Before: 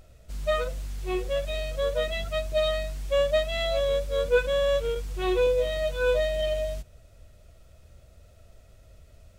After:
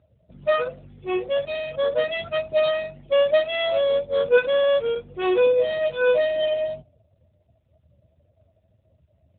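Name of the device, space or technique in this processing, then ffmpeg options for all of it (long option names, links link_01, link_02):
mobile call with aggressive noise cancelling: -af "highpass=frequency=120:poles=1,afftdn=noise_reduction=23:noise_floor=-49,volume=5.5dB" -ar 8000 -c:a libopencore_amrnb -b:a 12200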